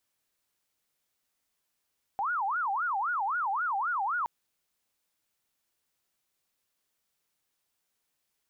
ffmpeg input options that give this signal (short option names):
-f lavfi -i "aevalsrc='0.0447*sin(2*PI*(1117*t-343/(2*PI*3.8)*sin(2*PI*3.8*t)))':d=2.07:s=44100"